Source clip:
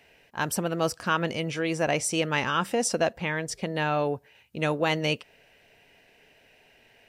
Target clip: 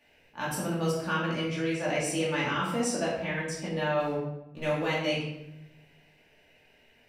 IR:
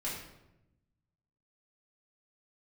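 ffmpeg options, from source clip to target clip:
-filter_complex "[0:a]asettb=1/sr,asplit=3[s0][s1][s2];[s0]atrim=end=3.994[s3];[s1]atrim=start=3.99:end=4.86,asetpts=PTS-STARTPTS,afade=t=in:d=0.004:c=qsin,afade=t=out:st=0.866:d=0.004:c=qsin,aeval=exprs='sgn(val(0))*max(abs(val(0))-0.00631,0)':c=same[s4];[s2]atrim=start=4.856[s5];[s3][s4]acrossfade=d=0.004:c1=hsin:c2=qsin[s6];[s6][s5]acrossfade=d=0.004:c1=qsin:c2=hsin[s7];[1:a]atrim=start_sample=2205[s8];[s7][s8]afir=irnorm=-1:irlink=0,volume=0.501"

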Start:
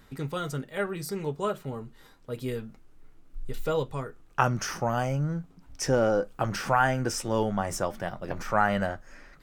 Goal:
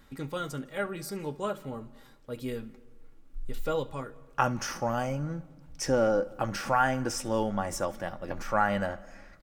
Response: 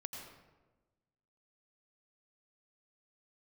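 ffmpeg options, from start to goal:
-filter_complex "[0:a]aecho=1:1:3.6:0.33,asplit=2[s0][s1];[1:a]atrim=start_sample=2205,adelay=69[s2];[s1][s2]afir=irnorm=-1:irlink=0,volume=0.158[s3];[s0][s3]amix=inputs=2:normalize=0,volume=0.75"

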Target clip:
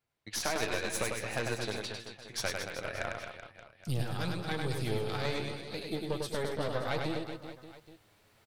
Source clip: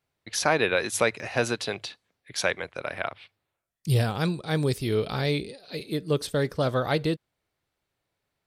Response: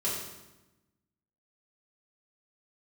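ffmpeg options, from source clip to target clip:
-filter_complex "[0:a]flanger=delay=8.5:depth=1.4:regen=39:speed=1.3:shape=triangular,areverse,acompressor=mode=upward:threshold=0.00355:ratio=2.5,areverse,aeval=exprs='0.251*(cos(1*acos(clip(val(0)/0.251,-1,1)))-cos(1*PI/2))+0.0501*(cos(6*acos(clip(val(0)/0.251,-1,1)))-cos(6*PI/2))+0.01*(cos(8*acos(clip(val(0)/0.251,-1,1)))-cos(8*PI/2))':c=same,acompressor=threshold=0.0316:ratio=3,asplit=2[s0][s1];[s1]aecho=0:1:100|225|381.2|576.6|820.7:0.631|0.398|0.251|0.158|0.1[s2];[s0][s2]amix=inputs=2:normalize=0,volume=0.841"

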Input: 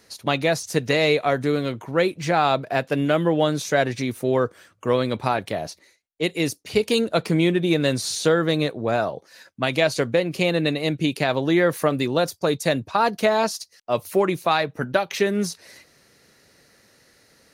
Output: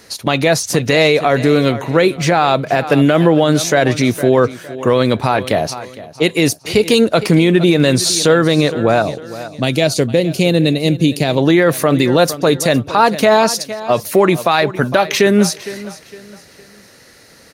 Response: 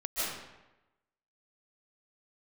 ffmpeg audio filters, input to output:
-filter_complex "[0:a]asettb=1/sr,asplit=3[s0][s1][s2];[s0]atrim=end=9.024[s3];[s1]atrim=start=9.02:end=11.38,asetpts=PTS-STARTPTS,afade=t=in:d=0.004:c=qsin,afade=t=out:st=2.356:d=0.004:c=qsin,equalizer=f=1300:t=o:w=2.2:g=-13[s4];[s2]atrim=start=11.376[s5];[s3][s4]acrossfade=d=0.004:c1=hsin:c2=qsin[s6];[s6][s5]acrossfade=d=0.004:c1=qsin:c2=hsin,aecho=1:1:459|918|1377:0.126|0.0428|0.0146,alimiter=level_in=4.47:limit=0.891:release=50:level=0:latency=1,volume=0.891"

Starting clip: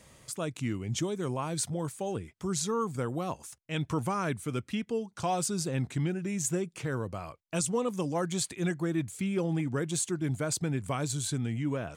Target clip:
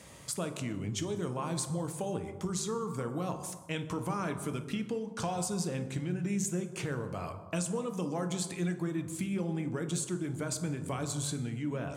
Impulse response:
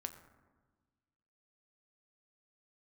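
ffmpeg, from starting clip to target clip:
-filter_complex "[0:a]acompressor=threshold=0.0158:ratio=10,highpass=82[s0];[1:a]atrim=start_sample=2205,afade=t=out:st=0.34:d=0.01,atrim=end_sample=15435,asetrate=31311,aresample=44100[s1];[s0][s1]afir=irnorm=-1:irlink=0,volume=2"

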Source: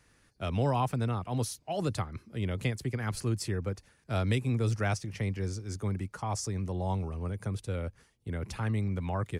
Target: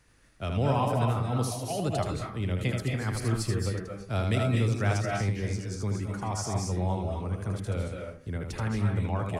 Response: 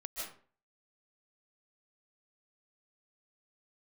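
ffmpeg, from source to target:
-filter_complex "[0:a]lowshelf=f=69:g=5,asplit=2[s0][s1];[1:a]atrim=start_sample=2205,adelay=78[s2];[s1][s2]afir=irnorm=-1:irlink=0,volume=1.06[s3];[s0][s3]amix=inputs=2:normalize=0"

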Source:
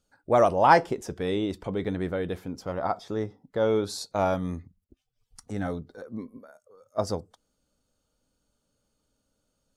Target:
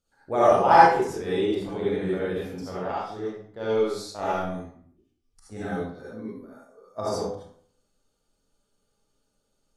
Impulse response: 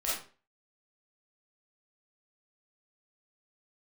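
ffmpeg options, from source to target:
-filter_complex "[0:a]asettb=1/sr,asplit=3[s0][s1][s2];[s0]atrim=end=2.804[s3];[s1]atrim=start=2.8:end=5.52,asetpts=PTS-STARTPTS,afade=t=in:d=0.004:c=qsin,afade=t=out:st=2.716:d=0.004:c=qsin,aeval=exprs='0.237*(cos(1*acos(clip(val(0)/0.237,-1,1)))-cos(1*PI/2))+0.0376*(cos(3*acos(clip(val(0)/0.237,-1,1)))-cos(3*PI/2))':c=same[s4];[s2]atrim=start=5.516[s5];[s3][s4]acrossfade=d=0.004:c1=hsin:c2=qsin[s6];[s6][s5]acrossfade=d=0.004:c1=qsin:c2=hsin[s7];[1:a]atrim=start_sample=2205,asetrate=27783,aresample=44100[s8];[s7][s8]afir=irnorm=-1:irlink=0,volume=0.422"

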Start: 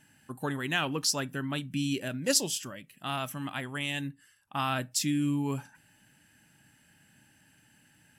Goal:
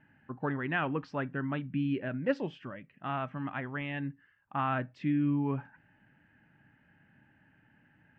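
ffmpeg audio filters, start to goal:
-af "lowpass=f=2100:w=0.5412,lowpass=f=2100:w=1.3066"

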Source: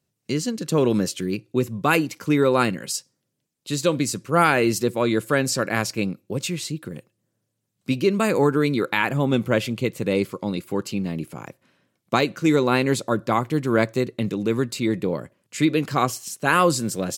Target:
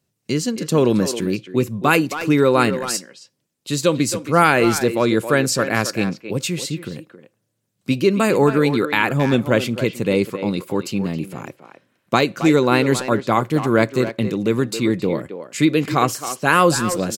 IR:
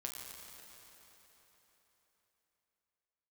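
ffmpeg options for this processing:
-filter_complex "[0:a]asplit=2[s0][s1];[s1]adelay=270,highpass=300,lowpass=3400,asoftclip=type=hard:threshold=0.211,volume=0.355[s2];[s0][s2]amix=inputs=2:normalize=0,asplit=2[s3][s4];[1:a]atrim=start_sample=2205,atrim=end_sample=3528[s5];[s4][s5]afir=irnorm=-1:irlink=0,volume=0.106[s6];[s3][s6]amix=inputs=2:normalize=0,volume=1.41"

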